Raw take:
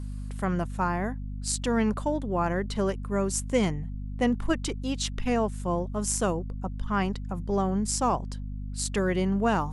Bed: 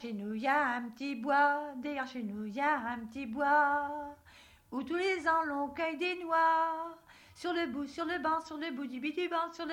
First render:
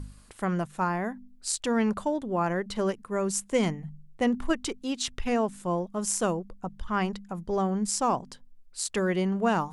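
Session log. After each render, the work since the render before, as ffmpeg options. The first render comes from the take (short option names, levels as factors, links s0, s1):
-af "bandreject=f=50:t=h:w=4,bandreject=f=100:t=h:w=4,bandreject=f=150:t=h:w=4,bandreject=f=200:t=h:w=4,bandreject=f=250:t=h:w=4"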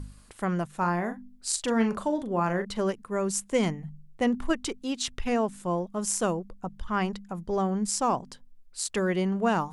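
-filter_complex "[0:a]asettb=1/sr,asplit=3[s0][s1][s2];[s0]atrim=end=0.794[s3];[s1]atrim=start=0.79:end=2.65,asetpts=PTS-STARTPTS,afade=t=in:d=0.004:c=qsin,afade=t=out:st=1.856:d=0.004:c=qsin,asplit=2[s4][s5];[s5]adelay=40,volume=0.376[s6];[s4][s6]amix=inputs=2:normalize=0,atrim=end_sample=82026[s7];[s2]atrim=start=2.646[s8];[s3][s7]acrossfade=d=0.004:c1=hsin:c2=qsin[s9];[s9][s8]acrossfade=d=0.004:c1=qsin:c2=hsin"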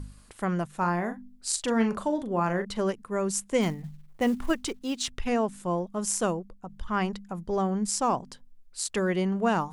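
-filter_complex "[0:a]asettb=1/sr,asplit=3[s0][s1][s2];[s0]atrim=end=3.614[s3];[s1]atrim=start=3.61:end=5.1,asetpts=PTS-STARTPTS,afade=t=in:d=0.004:c=qsin,afade=t=out:st=1.486:d=0.004:c=qsin,acrusher=bits=7:mode=log:mix=0:aa=0.000001[s4];[s2]atrim=start=5.096[s5];[s3][s4]acrossfade=d=0.004:c1=hsin:c2=qsin[s6];[s6][s5]acrossfade=d=0.004:c1=qsin:c2=hsin,asplit=2[s7][s8];[s7]atrim=end=6.69,asetpts=PTS-STARTPTS,afade=t=out:st=6.27:d=0.42:silence=0.446684[s9];[s8]atrim=start=6.69,asetpts=PTS-STARTPTS,afade=t=in:d=0.004:c=hsin:silence=0.446684[s10];[s9][s10]concat=n=2:v=0:a=1"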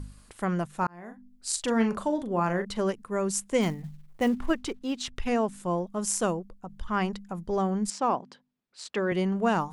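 -filter_complex "[0:a]asettb=1/sr,asplit=3[s0][s1][s2];[s0]atrim=end=4.284[s3];[s1]atrim=start=4.28:end=5.16,asetpts=PTS-STARTPTS,afade=t=in:d=0.004:c=qsin,afade=t=out:st=0.876:d=0.004:c=qsin,aemphasis=mode=reproduction:type=cd[s4];[s2]atrim=start=5.156[s5];[s3][s4]acrossfade=d=0.004:c1=hsin:c2=qsin[s6];[s6][s5]acrossfade=d=0.004:c1=qsin:c2=hsin,asettb=1/sr,asplit=3[s7][s8][s9];[s7]atrim=end=7.904[s10];[s8]atrim=start=7.9:end=9.12,asetpts=PTS-STARTPTS,afade=t=in:d=0.004:c=qsin,afade=t=out:st=1.216:d=0.004:c=qsin,highpass=210,lowpass=3700[s11];[s9]atrim=start=9.116[s12];[s10][s11]acrossfade=d=0.004:c1=hsin:c2=qsin[s13];[s13][s12]acrossfade=d=0.004:c1=qsin:c2=hsin,asplit=2[s14][s15];[s14]atrim=end=0.87,asetpts=PTS-STARTPTS,afade=t=out:st=0.866:d=0.004:c=hsin[s16];[s15]atrim=start=0.87,asetpts=PTS-STARTPTS,afade=t=in:d=0.75[s17];[s16][s17]concat=n=2:v=0:a=1"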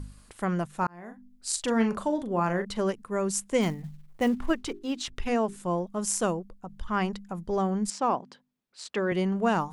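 -filter_complex "[0:a]asettb=1/sr,asplit=3[s0][s1][s2];[s0]atrim=end=4.554[s3];[s1]atrim=start=4.55:end=5.56,asetpts=PTS-STARTPTS,afade=t=in:d=0.004:c=qsin,afade=t=out:st=1.006:d=0.004:c=qsin,bandreject=f=50:t=h:w=6,bandreject=f=100:t=h:w=6,bandreject=f=150:t=h:w=6,bandreject=f=200:t=h:w=6,bandreject=f=250:t=h:w=6,bandreject=f=300:t=h:w=6,bandreject=f=350:t=h:w=6,bandreject=f=400:t=h:w=6[s4];[s2]atrim=start=5.556[s5];[s3][s4]acrossfade=d=0.004:c1=hsin:c2=qsin[s6];[s6][s5]acrossfade=d=0.004:c1=qsin:c2=hsin"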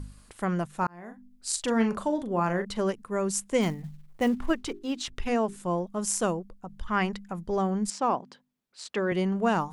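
-filter_complex "[0:a]asettb=1/sr,asplit=3[s0][s1][s2];[s0]atrim=end=6.864[s3];[s1]atrim=start=6.86:end=7.37,asetpts=PTS-STARTPTS,afade=t=in:d=0.004:c=qsin,afade=t=out:st=0.506:d=0.004:c=qsin,equalizer=f=2000:w=1.5:g=5.5[s4];[s2]atrim=start=7.366[s5];[s3][s4]acrossfade=d=0.004:c1=hsin:c2=qsin[s6];[s6][s5]acrossfade=d=0.004:c1=qsin:c2=hsin"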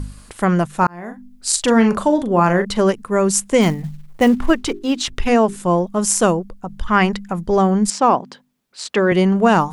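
-af "volume=3.98,alimiter=limit=0.708:level=0:latency=1"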